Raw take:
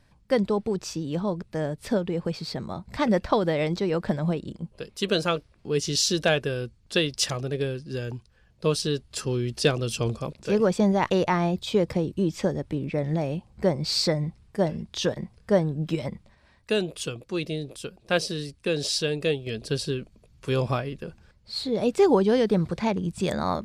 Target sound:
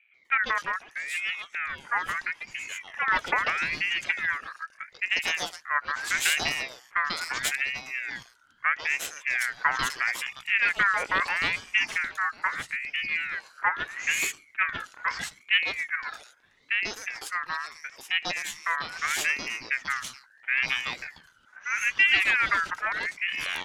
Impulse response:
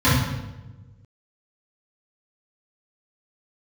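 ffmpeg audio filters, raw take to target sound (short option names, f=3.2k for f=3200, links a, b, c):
-filter_complex "[0:a]aeval=exprs='0.398*(cos(1*acos(clip(val(0)/0.398,-1,1)))-cos(1*PI/2))+0.0501*(cos(6*acos(clip(val(0)/0.398,-1,1)))-cos(6*PI/2))':c=same,acrossover=split=1000|3700[a][b][c];[b]adelay=140[d];[c]adelay=250[e];[a][d][e]amix=inputs=3:normalize=0,aeval=exprs='val(0)*sin(2*PI*1900*n/s+1900*0.25/0.77*sin(2*PI*0.77*n/s))':c=same"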